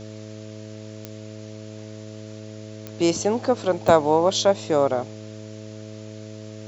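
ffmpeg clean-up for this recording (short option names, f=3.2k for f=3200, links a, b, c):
-af "adeclick=t=4,bandreject=f=107.5:t=h:w=4,bandreject=f=215:t=h:w=4,bandreject=f=322.5:t=h:w=4,bandreject=f=430:t=h:w=4,bandreject=f=537.5:t=h:w=4,bandreject=f=645:t=h:w=4,afwtdn=0.0045"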